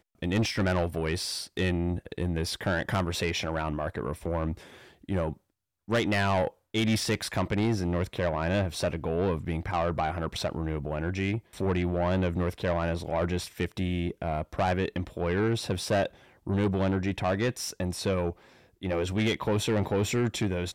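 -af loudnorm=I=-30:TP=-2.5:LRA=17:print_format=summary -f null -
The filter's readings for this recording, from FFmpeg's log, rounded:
Input Integrated:    -29.3 LUFS
Input True Peak:     -20.5 dBTP
Input LRA:             1.5 LU
Input Threshold:     -39.5 LUFS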